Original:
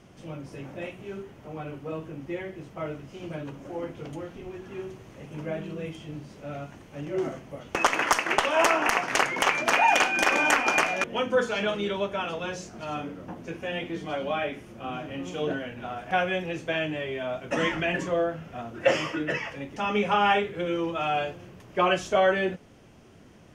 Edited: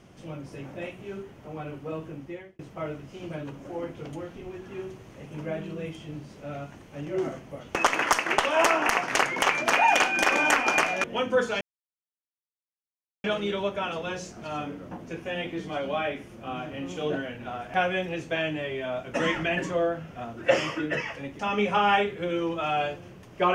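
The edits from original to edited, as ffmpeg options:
-filter_complex "[0:a]asplit=3[s0][s1][s2];[s0]atrim=end=2.59,asetpts=PTS-STARTPTS,afade=t=out:st=2.13:d=0.46[s3];[s1]atrim=start=2.59:end=11.61,asetpts=PTS-STARTPTS,afade=t=in:d=0.004:c=hsin,afade=t=out:st=9.016:d=0.004:c=hsin,apad=pad_dur=1.63[s4];[s2]atrim=start=11.61,asetpts=PTS-STARTPTS,afade=t=in:d=0.004:c=hsin[s5];[s3][s4][s5]concat=n=3:v=0:a=1"

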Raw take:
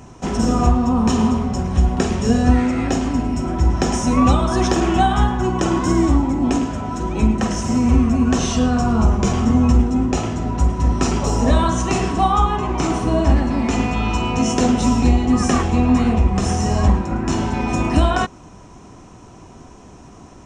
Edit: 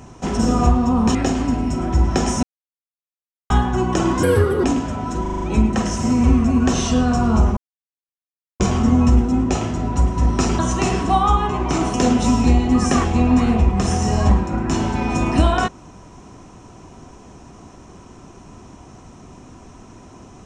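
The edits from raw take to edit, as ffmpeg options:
-filter_complex "[0:a]asplit=14[s0][s1][s2][s3][s4][s5][s6][s7][s8][s9][s10][s11][s12][s13];[s0]atrim=end=1.152[s14];[s1]atrim=start=2.808:end=4.09,asetpts=PTS-STARTPTS,afade=t=out:st=1.278:d=0.004:c=hsin[s15];[s2]atrim=start=4.09:end=5.16,asetpts=PTS-STARTPTS,volume=0[s16];[s3]atrim=start=5.16:end=5.894,asetpts=PTS-STARTPTS,afade=t=in:d=0.004:c=hsin[s17];[s4]atrim=start=5.89:end=6.49,asetpts=PTS-STARTPTS,asetrate=64827,aresample=44100[s18];[s5]atrim=start=6.486:end=7.112[s19];[s6]atrim=start=7.068:end=7.112[s20];[s7]atrim=start=7.068:end=7.112[s21];[s8]atrim=start=7.068:end=7.112[s22];[s9]atrim=start=7.068:end=7.112[s23];[s10]atrim=start=7.068:end=9.22,asetpts=PTS-STARTPTS,afade=t=out:st=2.148:d=0.004:c=hsin,apad=pad_dur=1.03[s24];[s11]atrim=start=9.22:end=11.212,asetpts=PTS-STARTPTS,afade=t=in:d=0.004:c=hsin[s25];[s12]atrim=start=11.678:end=13.032[s26];[s13]atrim=start=14.518[s27];[s15][s16][s17]concat=n=3:v=0:a=1[s28];[s14][s28]acrossfade=d=0.004:c1=hsin:c2=hsin[s29];[s29][s18]acrossfade=d=0.004:c1=hsin:c2=hsin[s30];[s30][s19]acrossfade=d=0.004:c1=hsin:c2=hsin[s31];[s31][s20]acrossfade=d=0.004:c1=hsin:c2=hsin[s32];[s32][s21]acrossfade=d=0.004:c1=hsin:c2=hsin[s33];[s33][s22]acrossfade=d=0.004:c1=hsin:c2=hsin[s34];[s34][s23]acrossfade=d=0.004:c1=hsin:c2=hsin[s35];[s24][s25]concat=n=2:v=0:a=1[s36];[s35][s36]acrossfade=d=0.004:c1=hsin:c2=hsin[s37];[s37][s26]acrossfade=d=0.004:c1=hsin:c2=hsin[s38];[s38][s27]acrossfade=d=0.004:c1=hsin:c2=hsin"

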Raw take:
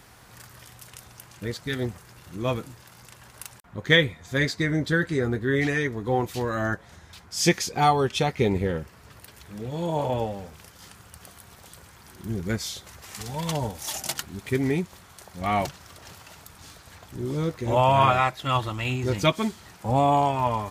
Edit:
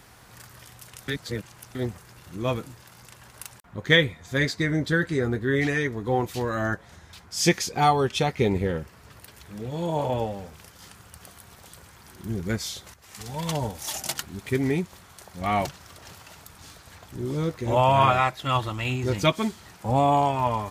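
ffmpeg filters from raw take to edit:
-filter_complex "[0:a]asplit=4[s0][s1][s2][s3];[s0]atrim=end=1.082[s4];[s1]atrim=start=1.078:end=1.752,asetpts=PTS-STARTPTS,areverse[s5];[s2]atrim=start=1.748:end=12.94,asetpts=PTS-STARTPTS,afade=t=out:st=11.188:d=0.004:c=hsin:silence=0.223872[s6];[s3]atrim=start=12.94,asetpts=PTS-STARTPTS,afade=t=in:d=0.64:c=qsin:silence=0.223872[s7];[s4][s5]acrossfade=d=0.004:c1=hsin:c2=hsin[s8];[s6][s7]concat=n=2:v=0:a=1[s9];[s8][s9]acrossfade=d=0.004:c1=hsin:c2=hsin"

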